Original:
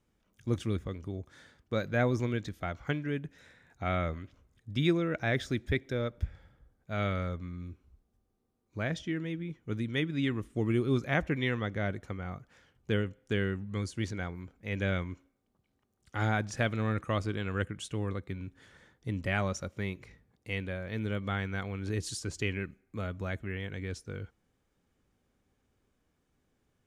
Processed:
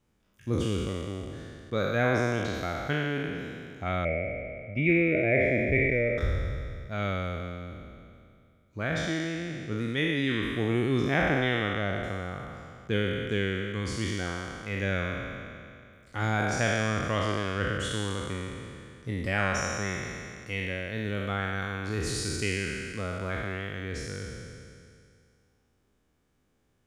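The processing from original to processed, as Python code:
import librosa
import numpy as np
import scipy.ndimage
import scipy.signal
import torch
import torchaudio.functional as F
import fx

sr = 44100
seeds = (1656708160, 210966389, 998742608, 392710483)

y = fx.spec_trails(x, sr, decay_s=2.35)
y = fx.curve_eq(y, sr, hz=(360.0, 630.0, 900.0, 1500.0, 2300.0, 3600.0), db=(0, 7, -21, -14, 10, -23), at=(4.05, 6.18))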